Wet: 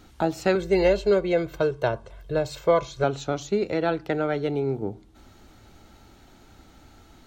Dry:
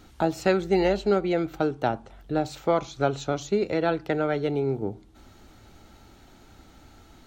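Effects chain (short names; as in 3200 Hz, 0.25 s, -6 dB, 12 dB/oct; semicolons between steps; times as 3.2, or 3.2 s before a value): 0.55–3.04 comb 1.9 ms, depth 83%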